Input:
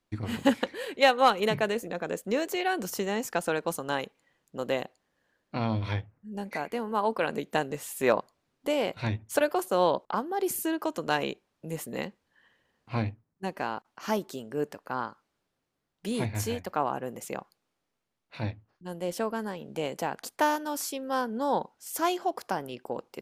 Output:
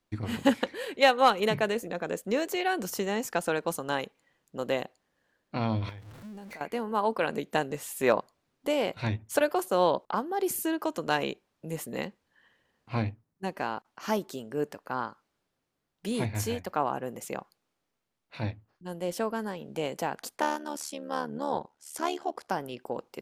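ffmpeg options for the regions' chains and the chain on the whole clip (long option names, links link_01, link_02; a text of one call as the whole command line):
ffmpeg -i in.wav -filter_complex "[0:a]asettb=1/sr,asplit=3[link_01][link_02][link_03];[link_01]atrim=end=5.894[link_04];[link_02]atrim=start=5.89:end=6.61,asetpts=PTS-STARTPTS,afade=type=in:duration=0.004:curve=qsin,afade=type=out:start_time=0.716:duration=0.004:curve=qsin,aeval=exprs='val(0)+0.5*0.0075*sgn(val(0))':channel_layout=same,acompressor=threshold=-40dB:ratio=16:attack=3.2:release=140:knee=1:detection=peak[link_05];[link_03]atrim=start=6.606[link_06];[link_04][link_05]acrossfade=duration=0.004:curve1=hsin:curve2=qsin[link_07];[link_07][link_06]acrossfade=duration=0.004:curve1=qsin:curve2=hsin,asettb=1/sr,asplit=3[link_08][link_09][link_10];[link_08]atrim=end=20.384[link_11];[link_09]atrim=start=20.38:end=22.5,asetpts=PTS-STARTPTS,afade=type=in:duration=0.004:curve=qsin,afade=type=out:start_time=2.116:duration=0.004:curve=qsin,lowpass=frequency=11000:width=0.5412,lowpass=frequency=11000:width=1.3066,tremolo=f=74:d=0.824[link_12];[link_10]atrim=start=22.496[link_13];[link_11][link_12]acrossfade=duration=0.004:curve1=hsin:curve2=qsin[link_14];[link_14][link_13]acrossfade=duration=0.004:curve1=qsin:curve2=hsin" out.wav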